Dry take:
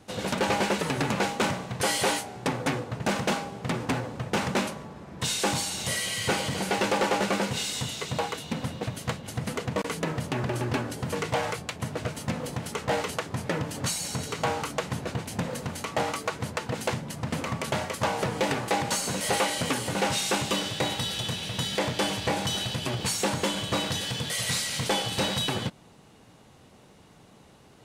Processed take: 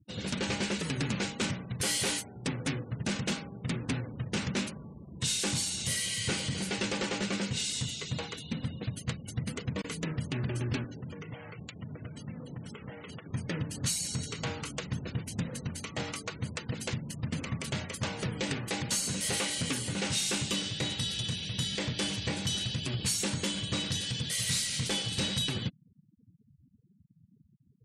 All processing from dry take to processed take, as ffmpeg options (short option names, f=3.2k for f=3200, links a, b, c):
-filter_complex "[0:a]asettb=1/sr,asplit=3[a][b][c];[a]atrim=end=10.844[d];[b]atrim=start=10.84:end=13.31,asetpts=PTS-STARTPTS,afade=t=in:d=0.004:c=qsin,afade=t=out:st=2.466:d=0.004:c=qsin,highpass=88,highshelf=f=6k:g=-7.5,acompressor=threshold=-33dB:ratio=5:attack=3.2:release=140:knee=1:detection=peak[e];[c]atrim=start=13.306[f];[d][e]acrossfade=d=0.004:c1=hsin:c2=qsin[g];[g][f]acrossfade=d=0.004:c1=qsin:c2=hsin,afftfilt=real='re*gte(hypot(re,im),0.0112)':imag='im*gte(hypot(re,im),0.0112)':win_size=1024:overlap=0.75,equalizer=f=800:t=o:w=2.1:g=-15"